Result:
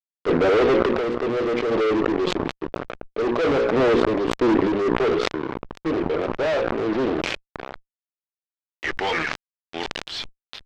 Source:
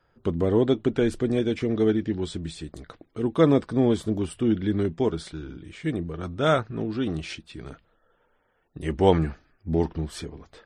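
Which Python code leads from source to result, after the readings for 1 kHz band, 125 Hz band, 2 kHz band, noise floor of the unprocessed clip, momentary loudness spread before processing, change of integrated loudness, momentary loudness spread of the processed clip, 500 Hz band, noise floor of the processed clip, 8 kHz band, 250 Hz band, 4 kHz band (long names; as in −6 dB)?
+6.0 dB, −6.5 dB, +10.5 dB, −68 dBFS, 17 LU, +2.5 dB, 14 LU, +4.5 dB, below −85 dBFS, can't be measured, +0.5 dB, +6.5 dB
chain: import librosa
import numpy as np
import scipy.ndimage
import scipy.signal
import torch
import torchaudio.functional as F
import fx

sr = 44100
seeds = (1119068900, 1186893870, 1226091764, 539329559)

y = scipy.signal.sosfilt(scipy.signal.butter(2, 210.0, 'highpass', fs=sr, output='sos'), x)
y = fx.high_shelf(y, sr, hz=2500.0, db=9.5)
y = fx.hum_notches(y, sr, base_hz=60, count=9)
y = fx.filter_sweep_bandpass(y, sr, from_hz=520.0, to_hz=3700.0, start_s=7.08, end_s=10.08, q=2.1)
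y = fx.fuzz(y, sr, gain_db=42.0, gate_db=-47.0)
y = fx.tremolo_random(y, sr, seeds[0], hz=3.5, depth_pct=55)
y = fx.air_absorb(y, sr, metres=170.0)
y = fx.sustainer(y, sr, db_per_s=24.0)
y = F.gain(torch.from_numpy(y), -2.0).numpy()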